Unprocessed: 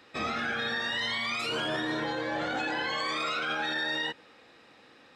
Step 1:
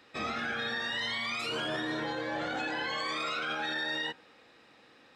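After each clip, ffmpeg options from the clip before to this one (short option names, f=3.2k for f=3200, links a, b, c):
-af "bandreject=f=85.12:t=h:w=4,bandreject=f=170.24:t=h:w=4,bandreject=f=255.36:t=h:w=4,bandreject=f=340.48:t=h:w=4,bandreject=f=425.6:t=h:w=4,bandreject=f=510.72:t=h:w=4,bandreject=f=595.84:t=h:w=4,bandreject=f=680.96:t=h:w=4,bandreject=f=766.08:t=h:w=4,bandreject=f=851.2:t=h:w=4,bandreject=f=936.32:t=h:w=4,bandreject=f=1.02144k:t=h:w=4,bandreject=f=1.10656k:t=h:w=4,bandreject=f=1.19168k:t=h:w=4,bandreject=f=1.2768k:t=h:w=4,bandreject=f=1.36192k:t=h:w=4,bandreject=f=1.44704k:t=h:w=4,bandreject=f=1.53216k:t=h:w=4,bandreject=f=1.61728k:t=h:w=4,volume=-2.5dB"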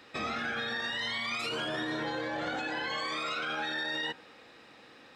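-af "alimiter=level_in=6.5dB:limit=-24dB:level=0:latency=1:release=51,volume=-6.5dB,volume=4.5dB"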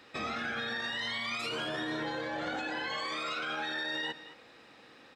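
-af "aecho=1:1:215:0.168,volume=-1.5dB"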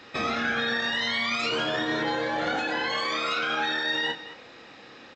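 -filter_complex "[0:a]asplit=2[a][b];[b]adelay=30,volume=-7.5dB[c];[a][c]amix=inputs=2:normalize=0,volume=7.5dB" -ar 16000 -c:a pcm_alaw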